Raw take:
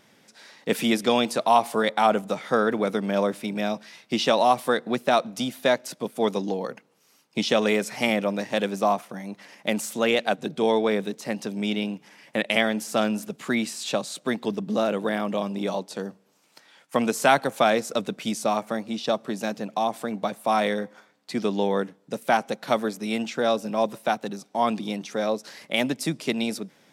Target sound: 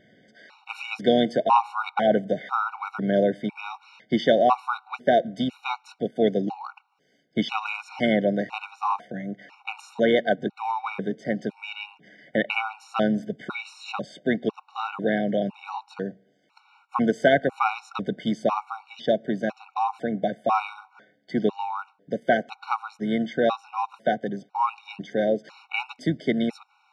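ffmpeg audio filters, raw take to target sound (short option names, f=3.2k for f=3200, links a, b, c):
-filter_complex "[0:a]asplit=2[a][b];[b]asetrate=29433,aresample=44100,atempo=1.49831,volume=-18dB[c];[a][c]amix=inputs=2:normalize=0,lowpass=2.8k,afftfilt=real='re*gt(sin(2*PI*1*pts/sr)*(1-2*mod(floor(b*sr/1024/740),2)),0)':imag='im*gt(sin(2*PI*1*pts/sr)*(1-2*mod(floor(b*sr/1024/740),2)),0)':win_size=1024:overlap=0.75,volume=3dB"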